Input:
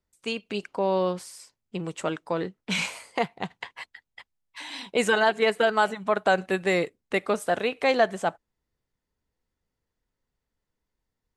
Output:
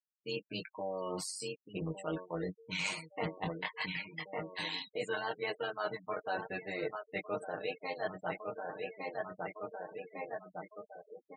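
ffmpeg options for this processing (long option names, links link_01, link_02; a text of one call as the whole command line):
ffmpeg -i in.wav -filter_complex "[0:a]flanger=delay=17:depth=3.2:speed=0.36,asplit=2[link_01][link_02];[link_02]adelay=1157,lowpass=frequency=4000:poles=1,volume=-15dB,asplit=2[link_03][link_04];[link_04]adelay=1157,lowpass=frequency=4000:poles=1,volume=0.46,asplit=2[link_05][link_06];[link_06]adelay=1157,lowpass=frequency=4000:poles=1,volume=0.46,asplit=2[link_07][link_08];[link_08]adelay=1157,lowpass=frequency=4000:poles=1,volume=0.46[link_09];[link_03][link_05][link_07][link_09]amix=inputs=4:normalize=0[link_10];[link_01][link_10]amix=inputs=2:normalize=0,dynaudnorm=framelen=350:gausssize=3:maxgain=13dB,bandreject=frequency=1600:width=25,tremolo=f=95:d=0.75,areverse,acompressor=threshold=-31dB:ratio=10,areverse,equalizer=frequency=4300:width_type=o:width=0.22:gain=4,aecho=1:1:6.5:0.57,afftdn=noise_reduction=13:noise_floor=-44,afftfilt=real='re*gte(hypot(re,im),0.00794)':imag='im*gte(hypot(re,im),0.00794)':win_size=1024:overlap=0.75,adynamicequalizer=threshold=0.00316:dfrequency=240:dqfactor=1.1:tfrequency=240:tqfactor=1.1:attack=5:release=100:ratio=0.375:range=2.5:mode=cutabove:tftype=bell,volume=-3dB" out.wav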